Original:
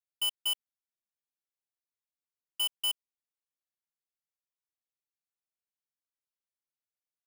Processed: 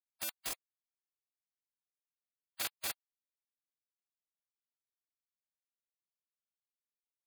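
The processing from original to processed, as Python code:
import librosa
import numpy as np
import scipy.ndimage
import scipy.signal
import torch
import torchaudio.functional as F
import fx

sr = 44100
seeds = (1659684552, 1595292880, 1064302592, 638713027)

y = fx.cycle_switch(x, sr, every=2, mode='muted')
y = fx.spec_gate(y, sr, threshold_db=-20, keep='weak')
y = F.gain(torch.from_numpy(y), 1.5).numpy()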